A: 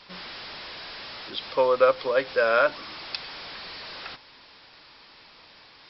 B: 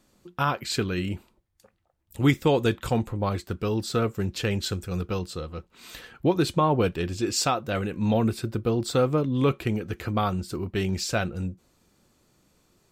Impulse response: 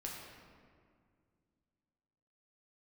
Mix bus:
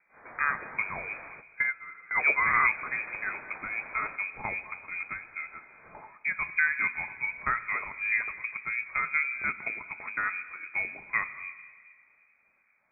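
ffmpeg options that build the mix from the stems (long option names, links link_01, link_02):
-filter_complex "[0:a]volume=-2.5dB,asplit=2[link_01][link_02];[link_02]volume=-20.5dB[link_03];[1:a]highpass=77,bass=frequency=250:gain=2,treble=frequency=4000:gain=10,acrossover=split=1100[link_04][link_05];[link_04]aeval=exprs='val(0)*(1-0.7/2+0.7/2*cos(2*PI*2.6*n/s))':channel_layout=same[link_06];[link_05]aeval=exprs='val(0)*(1-0.7/2-0.7/2*cos(2*PI*2.6*n/s))':channel_layout=same[link_07];[link_06][link_07]amix=inputs=2:normalize=0,volume=1dB,asplit=3[link_08][link_09][link_10];[link_09]volume=-8dB[link_11];[link_10]apad=whole_len=259946[link_12];[link_01][link_12]sidechaingate=range=-29dB:threshold=-60dB:ratio=16:detection=peak[link_13];[2:a]atrim=start_sample=2205[link_14];[link_03][link_11]amix=inputs=2:normalize=0[link_15];[link_15][link_14]afir=irnorm=-1:irlink=0[link_16];[link_13][link_08][link_16]amix=inputs=3:normalize=0,highpass=frequency=600:poles=1,lowpass=frequency=2200:width_type=q:width=0.5098,lowpass=frequency=2200:width_type=q:width=0.6013,lowpass=frequency=2200:width_type=q:width=0.9,lowpass=frequency=2200:width_type=q:width=2.563,afreqshift=-2600"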